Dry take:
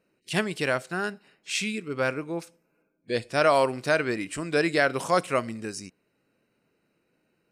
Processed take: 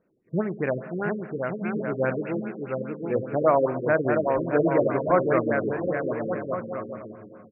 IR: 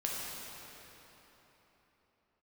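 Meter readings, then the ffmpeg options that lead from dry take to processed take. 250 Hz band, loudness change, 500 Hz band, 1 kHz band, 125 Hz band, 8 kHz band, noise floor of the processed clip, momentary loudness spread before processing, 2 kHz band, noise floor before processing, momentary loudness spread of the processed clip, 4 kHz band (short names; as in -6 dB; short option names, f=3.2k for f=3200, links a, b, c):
+4.5 dB, +1.0 dB, +4.0 dB, +1.0 dB, +5.0 dB, under -40 dB, -50 dBFS, 13 LU, -4.0 dB, -74 dBFS, 10 LU, under -30 dB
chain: -filter_complex "[0:a]asuperstop=centerf=5000:order=8:qfactor=0.7,highshelf=f=2.4k:g=-11.5,aecho=1:1:720|1152|1411|1567|1660:0.631|0.398|0.251|0.158|0.1,asplit=2[a][b];[1:a]atrim=start_sample=2205[c];[b][c]afir=irnorm=-1:irlink=0,volume=-14dB[d];[a][d]amix=inputs=2:normalize=0,afftfilt=real='re*lt(b*sr/1024,510*pow(3100/510,0.5+0.5*sin(2*PI*4.9*pts/sr)))':imag='im*lt(b*sr/1024,510*pow(3100/510,0.5+0.5*sin(2*PI*4.9*pts/sr)))':win_size=1024:overlap=0.75,volume=1dB"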